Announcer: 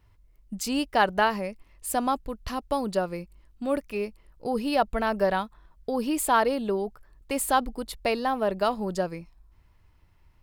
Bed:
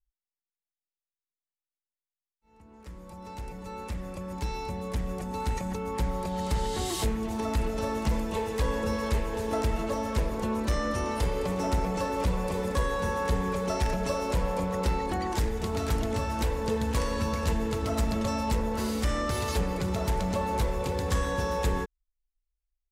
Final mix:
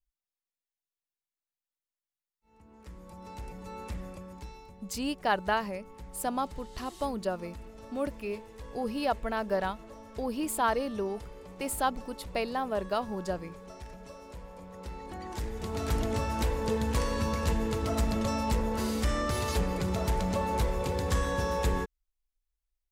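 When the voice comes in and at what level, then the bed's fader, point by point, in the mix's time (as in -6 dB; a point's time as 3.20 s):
4.30 s, -5.5 dB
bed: 4.02 s -3 dB
4.75 s -18 dB
14.60 s -18 dB
15.98 s -1 dB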